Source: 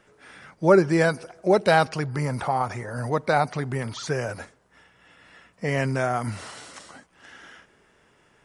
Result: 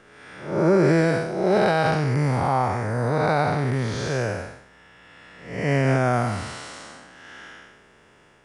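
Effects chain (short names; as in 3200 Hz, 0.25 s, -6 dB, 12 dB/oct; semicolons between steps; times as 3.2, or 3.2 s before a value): time blur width 0.265 s; high shelf 9200 Hz -5.5 dB; maximiser +15.5 dB; gain -8 dB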